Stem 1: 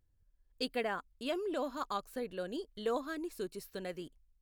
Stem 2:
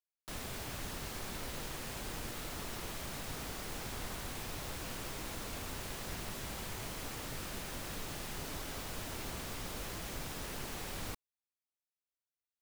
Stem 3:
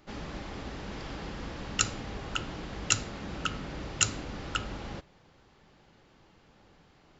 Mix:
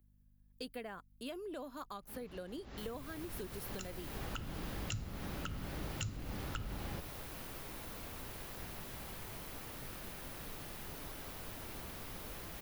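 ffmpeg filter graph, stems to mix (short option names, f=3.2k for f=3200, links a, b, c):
-filter_complex "[0:a]acontrast=85,aeval=exprs='val(0)+0.00141*(sin(2*PI*50*n/s)+sin(2*PI*2*50*n/s)/2+sin(2*PI*3*50*n/s)/3+sin(2*PI*4*50*n/s)/4+sin(2*PI*5*50*n/s)/5)':c=same,volume=-9.5dB,asplit=2[a][b];[1:a]highshelf=f=5.8k:g=-7.5,adelay=2500,volume=-5dB[c];[2:a]adelay=2000,volume=-2.5dB[d];[b]apad=whole_len=405451[e];[d][e]sidechaincompress=threshold=-57dB:ratio=5:attack=33:release=186[f];[a][c][f]amix=inputs=3:normalize=0,acrossover=split=190[g][h];[h]acompressor=threshold=-43dB:ratio=5[i];[g][i]amix=inputs=2:normalize=0,aexciter=amount=3.2:drive=4.5:freq=10k"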